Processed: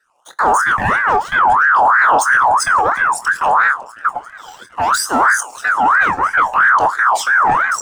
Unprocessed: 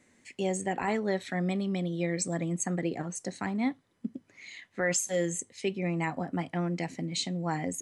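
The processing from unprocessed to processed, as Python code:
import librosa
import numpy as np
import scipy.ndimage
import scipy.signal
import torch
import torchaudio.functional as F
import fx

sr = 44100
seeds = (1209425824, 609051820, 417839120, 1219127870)

y = fx.octave_divider(x, sr, octaves=2, level_db=4.0)
y = fx.leveller(y, sr, passes=2)
y = fx.peak_eq(y, sr, hz=2900.0, db=-14.5, octaves=0.9)
y = fx.echo_swing(y, sr, ms=738, ratio=3, feedback_pct=62, wet_db=-23.5)
y = fx.phaser_stages(y, sr, stages=12, low_hz=190.0, high_hz=1400.0, hz=0.62, feedback_pct=30)
y = fx.rev_schroeder(y, sr, rt60_s=0.61, comb_ms=32, drr_db=18.5)
y = fx.leveller(y, sr, passes=1)
y = fx.doubler(y, sr, ms=24.0, db=-10.5)
y = fx.ring_lfo(y, sr, carrier_hz=1200.0, swing_pct=35, hz=3.0)
y = y * 10.0 ** (9.0 / 20.0)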